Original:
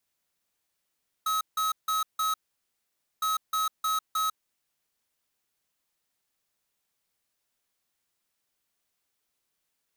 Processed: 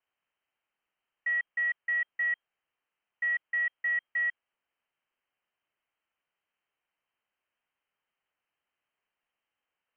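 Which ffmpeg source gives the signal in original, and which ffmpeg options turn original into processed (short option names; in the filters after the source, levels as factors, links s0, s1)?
-f lavfi -i "aevalsrc='0.0447*(2*lt(mod(1280*t,1),0.5)-1)*clip(min(mod(mod(t,1.96),0.31),0.15-mod(mod(t,1.96),0.31))/0.005,0,1)*lt(mod(t,1.96),1.24)':d=3.92:s=44100"
-af "lowpass=f=2700:t=q:w=0.5098,lowpass=f=2700:t=q:w=0.6013,lowpass=f=2700:t=q:w=0.9,lowpass=f=2700:t=q:w=2.563,afreqshift=-3200"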